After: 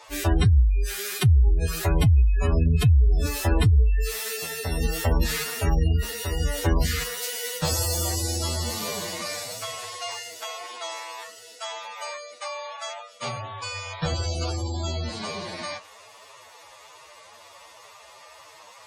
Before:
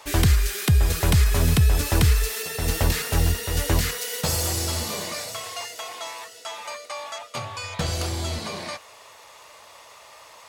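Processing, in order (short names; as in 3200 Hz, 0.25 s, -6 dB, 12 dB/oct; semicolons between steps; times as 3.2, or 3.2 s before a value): spectral gate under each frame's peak -25 dB strong; time stretch by phase-locked vocoder 1.8×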